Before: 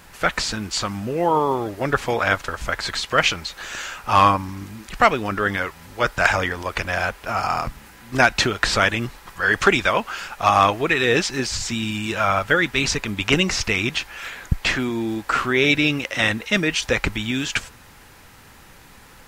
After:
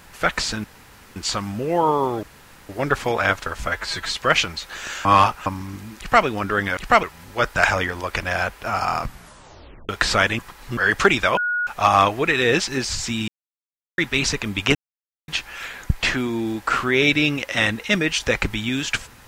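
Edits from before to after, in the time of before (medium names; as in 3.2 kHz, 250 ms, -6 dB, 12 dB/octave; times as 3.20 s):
0.64 s: insert room tone 0.52 s
1.71 s: insert room tone 0.46 s
2.69–2.97 s: stretch 1.5×
3.93–4.34 s: reverse
4.87–5.13 s: copy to 5.65 s
7.68 s: tape stop 0.83 s
9.01–9.39 s: reverse
9.99–10.29 s: bleep 1.45 kHz -19.5 dBFS
11.90–12.60 s: mute
13.37–13.90 s: mute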